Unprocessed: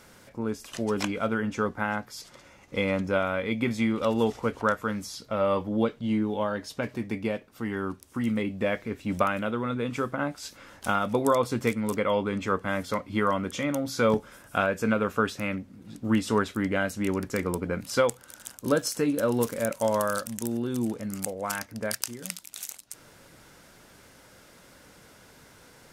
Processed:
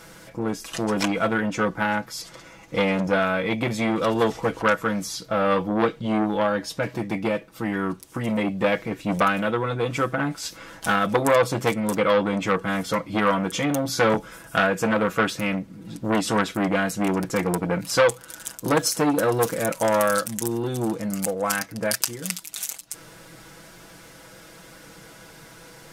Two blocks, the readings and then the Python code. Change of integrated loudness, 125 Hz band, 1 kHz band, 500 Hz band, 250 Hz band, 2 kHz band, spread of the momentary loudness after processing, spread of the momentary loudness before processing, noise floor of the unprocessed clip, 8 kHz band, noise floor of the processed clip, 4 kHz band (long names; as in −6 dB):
+4.5 dB, +4.5 dB, +5.5 dB, +4.5 dB, +3.5 dB, +6.0 dB, 9 LU, 10 LU, −54 dBFS, +7.0 dB, −47 dBFS, +7.0 dB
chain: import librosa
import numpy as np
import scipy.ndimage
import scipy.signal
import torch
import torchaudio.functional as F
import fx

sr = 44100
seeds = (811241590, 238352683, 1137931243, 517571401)

y = x + 0.64 * np.pad(x, (int(6.1 * sr / 1000.0), 0))[:len(x)]
y = fx.transformer_sat(y, sr, knee_hz=1700.0)
y = y * librosa.db_to_amplitude(6.0)